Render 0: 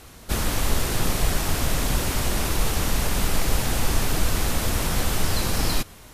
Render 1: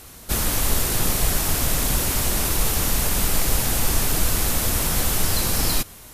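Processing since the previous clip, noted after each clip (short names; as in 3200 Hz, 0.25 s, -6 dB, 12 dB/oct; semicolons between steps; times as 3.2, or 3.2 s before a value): high shelf 7400 Hz +11 dB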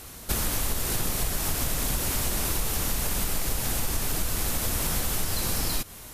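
compressor, threshold -23 dBFS, peak gain reduction 9.5 dB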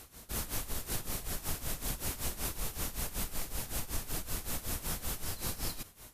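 tremolo 5.3 Hz, depth 81%; gain -6.5 dB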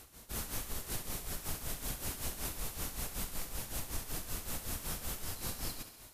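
thinning echo 68 ms, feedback 69%, high-pass 200 Hz, level -10.5 dB; gain -3 dB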